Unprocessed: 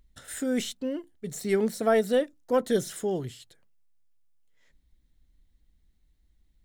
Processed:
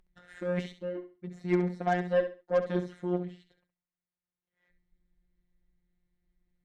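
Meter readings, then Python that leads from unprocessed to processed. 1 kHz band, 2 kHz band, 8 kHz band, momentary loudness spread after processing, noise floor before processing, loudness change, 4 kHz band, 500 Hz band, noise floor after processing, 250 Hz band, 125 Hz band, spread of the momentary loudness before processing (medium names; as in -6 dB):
-1.0 dB, -2.0 dB, under -20 dB, 12 LU, -67 dBFS, -3.5 dB, -11.5 dB, -4.5 dB, under -85 dBFS, -3.5 dB, +3.5 dB, 12 LU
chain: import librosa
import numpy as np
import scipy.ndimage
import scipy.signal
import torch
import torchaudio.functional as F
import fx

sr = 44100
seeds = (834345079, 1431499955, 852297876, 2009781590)

p1 = scipy.signal.sosfilt(scipy.signal.butter(2, 2100.0, 'lowpass', fs=sr, output='sos'), x)
p2 = fx.rider(p1, sr, range_db=5, speed_s=2.0)
p3 = fx.robotise(p2, sr, hz=178.0)
p4 = fx.cheby_harmonics(p3, sr, harmonics=(4, 7), levels_db=(-26, -25), full_scale_db=-13.5)
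y = p4 + fx.echo_feedback(p4, sr, ms=67, feedback_pct=25, wet_db=-10.5, dry=0)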